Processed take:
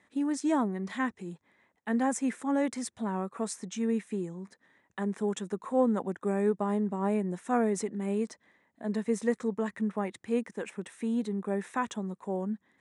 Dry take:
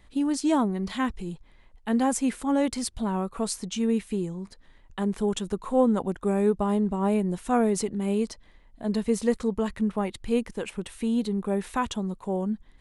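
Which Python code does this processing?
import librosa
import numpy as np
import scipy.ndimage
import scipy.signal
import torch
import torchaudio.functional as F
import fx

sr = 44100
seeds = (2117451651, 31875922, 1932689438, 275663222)

y = fx.cabinet(x, sr, low_hz=130.0, low_slope=24, high_hz=9300.0, hz=(140.0, 1800.0, 3000.0, 4500.0), db=(-9, 6, -7, -10))
y = y * 10.0 ** (-4.0 / 20.0)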